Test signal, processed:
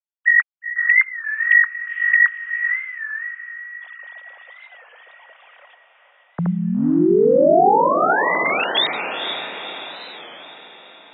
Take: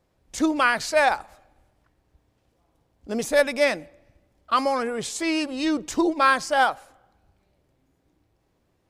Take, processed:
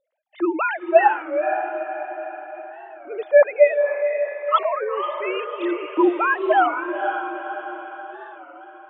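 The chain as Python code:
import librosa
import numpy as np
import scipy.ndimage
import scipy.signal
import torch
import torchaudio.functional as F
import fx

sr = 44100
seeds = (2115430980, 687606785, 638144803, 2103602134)

y = fx.sine_speech(x, sr)
y = fx.echo_diffused(y, sr, ms=491, feedback_pct=53, wet_db=-6.5)
y = fx.record_warp(y, sr, rpm=33.33, depth_cents=160.0)
y = y * 10.0 ** (3.0 / 20.0)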